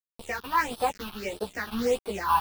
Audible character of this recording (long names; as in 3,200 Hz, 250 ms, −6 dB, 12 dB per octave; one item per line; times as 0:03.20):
a quantiser's noise floor 6 bits, dither none
phaser sweep stages 6, 1.6 Hz, lowest notch 510–2,000 Hz
sample-and-hold tremolo 3.5 Hz
a shimmering, thickened sound